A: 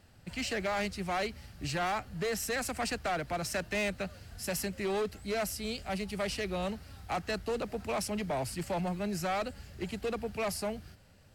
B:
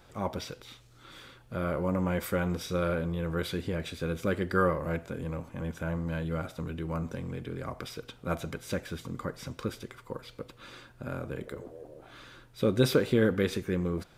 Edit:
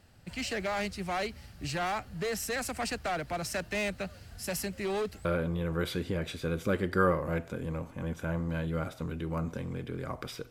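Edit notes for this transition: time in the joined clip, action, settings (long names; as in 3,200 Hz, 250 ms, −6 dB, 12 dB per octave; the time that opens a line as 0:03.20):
A
0:05.25: continue with B from 0:02.83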